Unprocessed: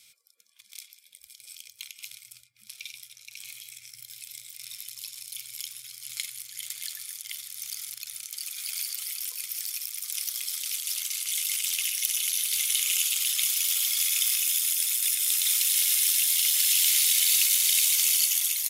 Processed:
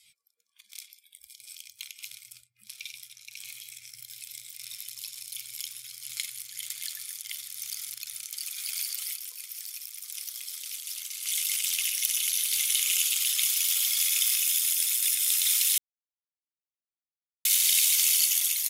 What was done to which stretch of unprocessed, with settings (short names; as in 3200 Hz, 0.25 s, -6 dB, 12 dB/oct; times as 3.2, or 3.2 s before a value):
9.16–11.23 gain -6 dB
11.85–12.55 inverse Chebyshev high-pass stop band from 170 Hz, stop band 60 dB
15.78–17.45 mute
whole clip: spectral noise reduction 13 dB; bell 670 Hz -3 dB 0.85 oct